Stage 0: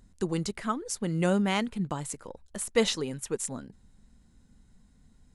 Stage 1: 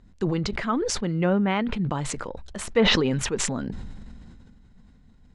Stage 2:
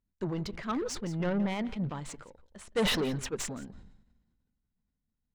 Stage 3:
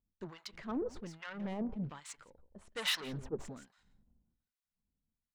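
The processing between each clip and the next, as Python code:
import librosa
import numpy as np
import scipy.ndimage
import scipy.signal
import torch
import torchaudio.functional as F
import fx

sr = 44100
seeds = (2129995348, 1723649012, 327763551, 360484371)

y1 = scipy.signal.sosfilt(scipy.signal.butter(2, 3900.0, 'lowpass', fs=sr, output='sos'), x)
y1 = fx.env_lowpass_down(y1, sr, base_hz=2300.0, full_db=-21.5)
y1 = fx.sustainer(y1, sr, db_per_s=23.0)
y1 = y1 * 10.0 ** (3.0 / 20.0)
y2 = 10.0 ** (-23.0 / 20.0) * np.tanh(y1 / 10.0 ** (-23.0 / 20.0))
y2 = y2 + 10.0 ** (-15.5 / 20.0) * np.pad(y2, (int(172 * sr / 1000.0), 0))[:len(y2)]
y2 = fx.upward_expand(y2, sr, threshold_db=-44.0, expansion=2.5)
y3 = fx.harmonic_tremolo(y2, sr, hz=1.2, depth_pct=100, crossover_hz=1000.0)
y3 = fx.doppler_dist(y3, sr, depth_ms=0.21)
y3 = y3 * 10.0 ** (-2.5 / 20.0)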